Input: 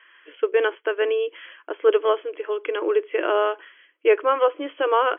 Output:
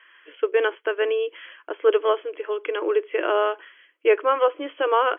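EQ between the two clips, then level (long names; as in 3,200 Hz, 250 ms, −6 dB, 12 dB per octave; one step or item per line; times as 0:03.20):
Bessel high-pass filter 230 Hz
0.0 dB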